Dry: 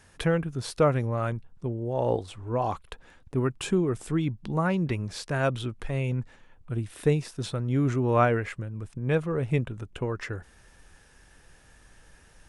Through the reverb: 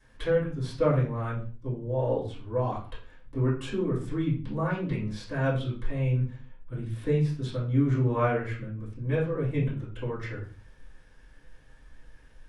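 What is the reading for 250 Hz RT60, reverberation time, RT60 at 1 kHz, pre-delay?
can't be measured, 0.40 s, 0.40 s, 3 ms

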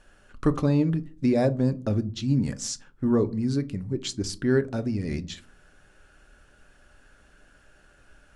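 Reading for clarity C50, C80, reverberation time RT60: 21.5 dB, 26.0 dB, 0.45 s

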